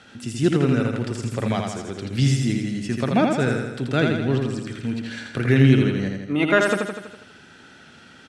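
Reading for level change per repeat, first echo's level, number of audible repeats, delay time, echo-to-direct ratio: −4.5 dB, −4.0 dB, 7, 82 ms, −2.0 dB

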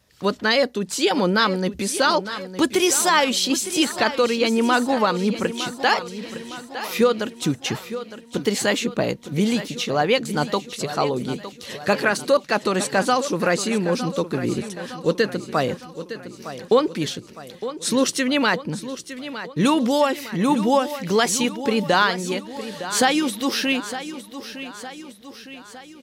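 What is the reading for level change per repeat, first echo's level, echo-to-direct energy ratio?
−5.5 dB, −12.5 dB, −11.0 dB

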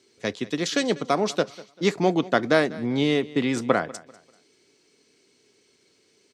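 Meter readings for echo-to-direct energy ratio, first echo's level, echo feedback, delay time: −19.5 dB, −20.0 dB, 32%, 195 ms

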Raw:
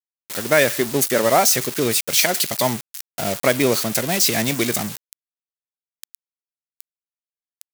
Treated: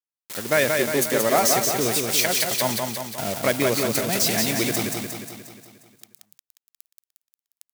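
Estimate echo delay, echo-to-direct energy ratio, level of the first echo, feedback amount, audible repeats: 178 ms, −2.5 dB, −4.0 dB, 57%, 7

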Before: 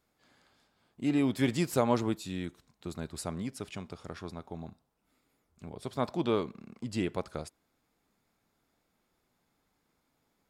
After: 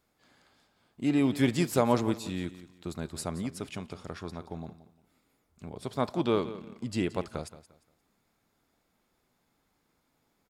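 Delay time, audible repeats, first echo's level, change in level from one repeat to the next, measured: 175 ms, 2, −15.0 dB, −11.0 dB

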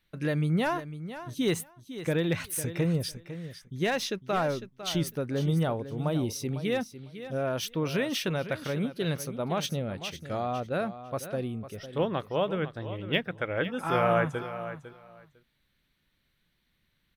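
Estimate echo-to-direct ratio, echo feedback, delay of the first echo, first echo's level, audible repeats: −12.5 dB, 16%, 502 ms, −12.5 dB, 2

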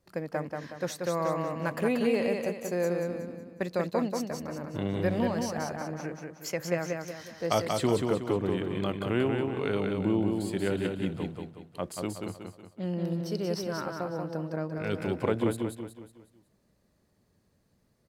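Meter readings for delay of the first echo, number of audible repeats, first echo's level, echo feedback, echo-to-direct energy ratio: 184 ms, 5, −4.0 dB, 42%, −3.0 dB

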